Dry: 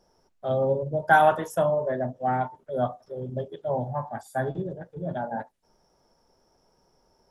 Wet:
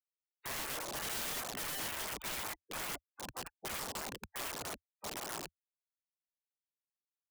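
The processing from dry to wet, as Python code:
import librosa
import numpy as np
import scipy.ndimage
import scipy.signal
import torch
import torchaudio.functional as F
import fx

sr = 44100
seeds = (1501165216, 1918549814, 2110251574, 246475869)

y = fx.peak_eq(x, sr, hz=3300.0, db=-7.5, octaves=0.53)
y = fx.echo_multitap(y, sr, ms=(63, 74, 97, 100, 605, 825), db=(-5.5, -17.5, -6.5, -7.5, -15.0, -16.5))
y = fx.schmitt(y, sr, flips_db=-25.0)
y = fx.spec_gate(y, sr, threshold_db=-20, keep='weak')
y = (np.mod(10.0 ** (37.0 / 20.0) * y + 1.0, 2.0) - 1.0) / 10.0 ** (37.0 / 20.0)
y = y * 10.0 ** (4.0 / 20.0)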